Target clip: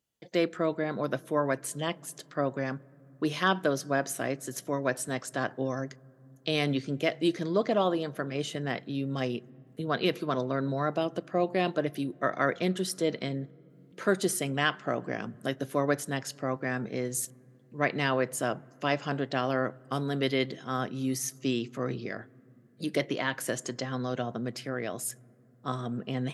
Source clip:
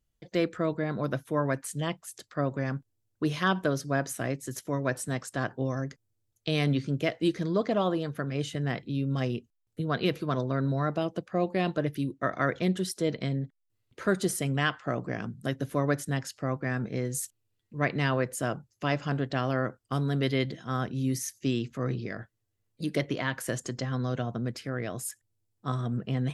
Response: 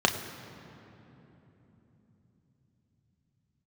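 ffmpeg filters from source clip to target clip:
-filter_complex "[0:a]highpass=110,lowshelf=frequency=220:gain=-7,asplit=2[link_01][link_02];[1:a]atrim=start_sample=2205,highshelf=frequency=3700:gain=-9[link_03];[link_02][link_03]afir=irnorm=-1:irlink=0,volume=-31dB[link_04];[link_01][link_04]amix=inputs=2:normalize=0,volume=1.5dB"

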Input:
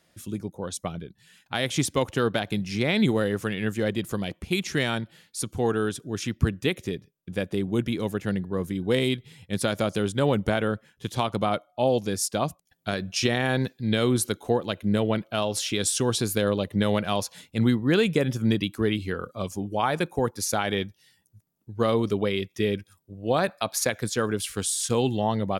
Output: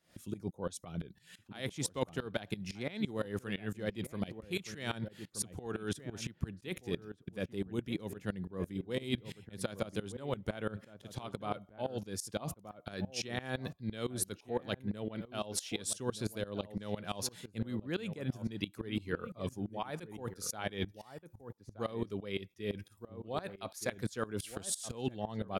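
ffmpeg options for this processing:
ffmpeg -i in.wav -filter_complex "[0:a]areverse,acompressor=threshold=-34dB:ratio=6,areverse,asplit=2[link_01][link_02];[link_02]adelay=1224,volume=-11dB,highshelf=frequency=4000:gain=-27.6[link_03];[link_01][link_03]amix=inputs=2:normalize=0,aeval=exprs='val(0)*pow(10,-20*if(lt(mod(-5.9*n/s,1),2*abs(-5.9)/1000),1-mod(-5.9*n/s,1)/(2*abs(-5.9)/1000),(mod(-5.9*n/s,1)-2*abs(-5.9)/1000)/(1-2*abs(-5.9)/1000))/20)':channel_layout=same,volume=5dB" out.wav

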